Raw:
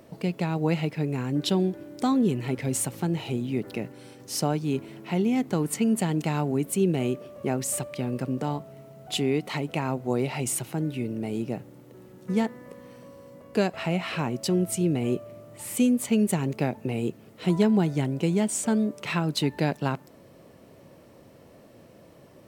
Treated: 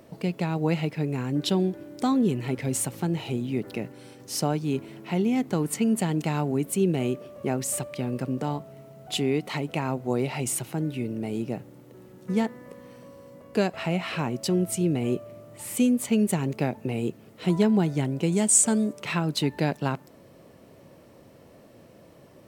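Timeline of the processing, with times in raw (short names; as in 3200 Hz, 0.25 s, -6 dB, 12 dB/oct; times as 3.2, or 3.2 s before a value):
18.32–18.93 bell 8200 Hz +12.5 dB 1 oct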